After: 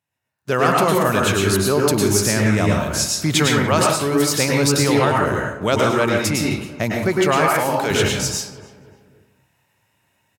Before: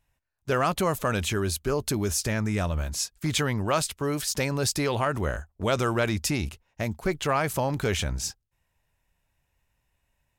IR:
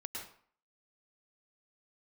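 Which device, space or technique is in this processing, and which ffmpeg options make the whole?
far laptop microphone: -filter_complex "[1:a]atrim=start_sample=2205[link_01];[0:a][link_01]afir=irnorm=-1:irlink=0,highpass=frequency=110:width=0.5412,highpass=frequency=110:width=1.3066,dynaudnorm=framelen=230:gausssize=3:maxgain=15dB,asettb=1/sr,asplit=3[link_02][link_03][link_04];[link_02]atrim=end=7.484[link_05];[link_03]atrim=start=7.48:end=7.91,asetpts=PTS-STARTPTS,afade=type=in:duration=0.004:curve=qsin,afade=type=out:start_time=0.426:duration=0.004:curve=qsin,highpass=frequency=470:poles=1[link_06];[link_04]atrim=start=7.906[link_07];[link_05][link_06]acrossfade=duration=0.004:curve1=hsin:curve2=qsin[link_08];[link_08][link_07]acrossfade=duration=0.004:curve1=qsin:curve2=hsin,asplit=2[link_09][link_10];[link_10]adelay=291,lowpass=frequency=2000:poles=1,volume=-17dB,asplit=2[link_11][link_12];[link_12]adelay=291,lowpass=frequency=2000:poles=1,volume=0.48,asplit=2[link_13][link_14];[link_14]adelay=291,lowpass=frequency=2000:poles=1,volume=0.48,asplit=2[link_15][link_16];[link_16]adelay=291,lowpass=frequency=2000:poles=1,volume=0.48[link_17];[link_09][link_11][link_13][link_15][link_17]amix=inputs=5:normalize=0,volume=-1.5dB"

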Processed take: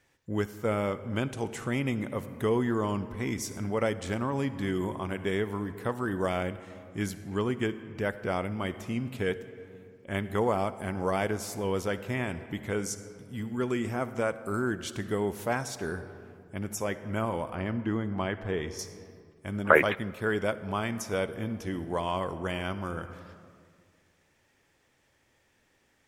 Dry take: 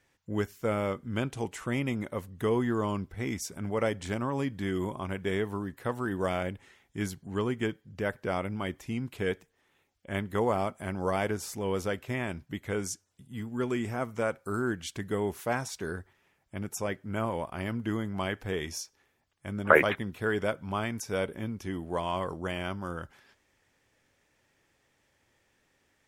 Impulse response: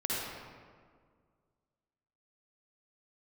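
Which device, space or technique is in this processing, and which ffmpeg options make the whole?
ducked reverb: -filter_complex "[0:a]asettb=1/sr,asplit=3[link_01][link_02][link_03];[link_01]atrim=end=17.554[link_04];[link_02]atrim=start=17.55:end=18.79,asetpts=PTS-STARTPTS,afade=type=in:duration=0.004:curve=qsin,afade=type=out:start_time=1.236:duration=0.004:curve=qsin,aemphasis=mode=reproduction:type=75fm[link_05];[link_03]atrim=start=18.786[link_06];[link_04][link_05]acrossfade=duration=0.004:curve1=hsin:curve2=qsin[link_07];[link_07][link_06]acrossfade=duration=0.004:curve1=qsin:curve2=hsin,asplit=3[link_08][link_09][link_10];[1:a]atrim=start_sample=2205[link_11];[link_09][link_11]afir=irnorm=-1:irlink=0[link_12];[link_10]apad=whole_len=1149752[link_13];[link_12][link_13]sidechaincompress=threshold=-31dB:ratio=8:attack=16:release=945,volume=-13dB[link_14];[link_08][link_14]amix=inputs=2:normalize=0"

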